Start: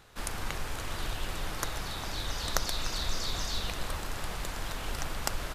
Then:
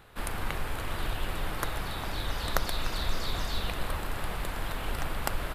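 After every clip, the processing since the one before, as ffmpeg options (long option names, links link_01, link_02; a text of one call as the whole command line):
ffmpeg -i in.wav -af "equalizer=frequency=6100:width_type=o:width=0.93:gain=-12,volume=3dB" out.wav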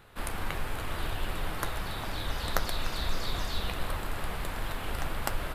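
ffmpeg -i in.wav -af "flanger=delay=7.6:depth=8.3:regen=-61:speed=1.5:shape=triangular,volume=3.5dB" out.wav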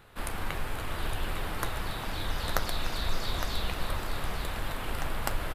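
ffmpeg -i in.wav -af "aecho=1:1:862:0.376" out.wav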